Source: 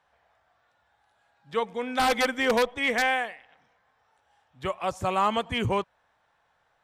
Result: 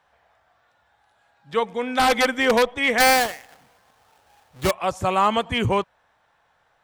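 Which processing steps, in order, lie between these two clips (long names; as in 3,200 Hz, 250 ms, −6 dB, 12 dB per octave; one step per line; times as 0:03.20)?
0:03.00–0:04.71: each half-wave held at its own peak
level +5 dB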